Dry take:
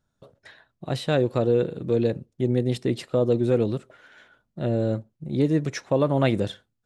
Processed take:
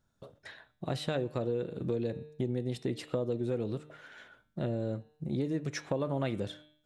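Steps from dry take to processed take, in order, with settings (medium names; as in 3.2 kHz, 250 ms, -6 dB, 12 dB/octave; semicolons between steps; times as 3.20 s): de-hum 151.3 Hz, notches 27; compression 4:1, threshold -31 dBFS, peak gain reduction 13 dB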